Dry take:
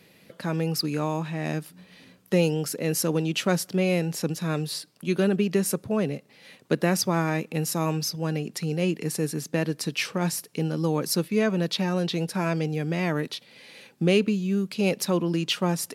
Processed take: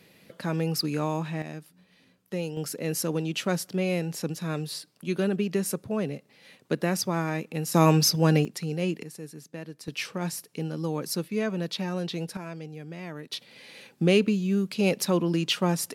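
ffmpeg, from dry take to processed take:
-af "asetnsamples=n=441:p=0,asendcmd='1.42 volume volume -10dB;2.57 volume volume -3.5dB;7.74 volume volume 7dB;8.45 volume volume -3dB;9.03 volume volume -13.5dB;9.88 volume volume -5dB;12.37 volume volume -12.5dB;13.32 volume volume 0dB',volume=0.891"

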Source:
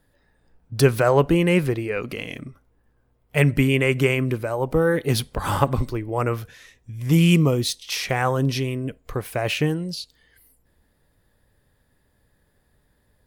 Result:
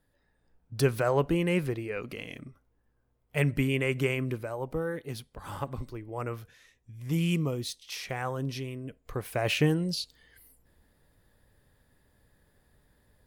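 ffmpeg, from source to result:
-af "volume=2.99,afade=t=out:st=4.32:d=0.92:silence=0.298538,afade=t=in:st=5.24:d=0.98:silence=0.421697,afade=t=in:st=8.87:d=1.01:silence=0.298538"

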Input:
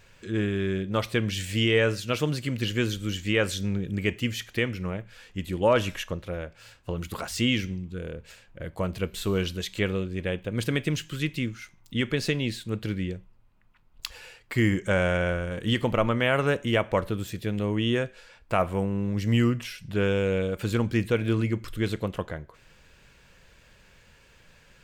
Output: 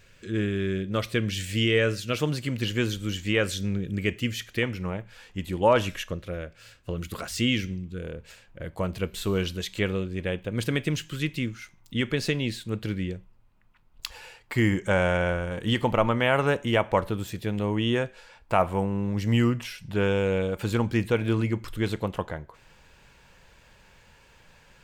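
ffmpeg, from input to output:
-af "asetnsamples=n=441:p=0,asendcmd='2.18 equalizer g 2;3.39 equalizer g -5.5;4.63 equalizer g 5;5.87 equalizer g -7;8.04 equalizer g 1;14.08 equalizer g 7',equalizer=f=870:t=o:w=0.5:g=-8.5"

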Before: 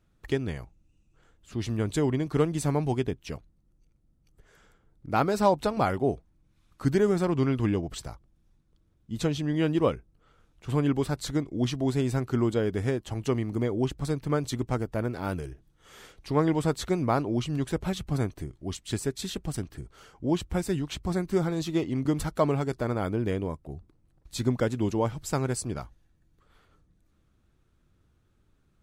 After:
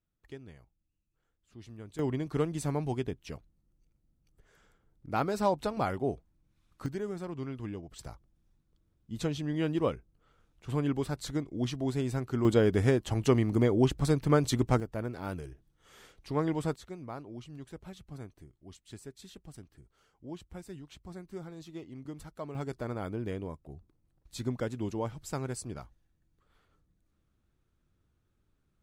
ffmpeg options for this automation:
-af "asetnsamples=n=441:p=0,asendcmd='1.99 volume volume -5.5dB;6.86 volume volume -13dB;7.99 volume volume -5dB;12.45 volume volume 2.5dB;14.8 volume volume -6dB;16.76 volume volume -16.5dB;22.55 volume volume -7.5dB',volume=0.126"

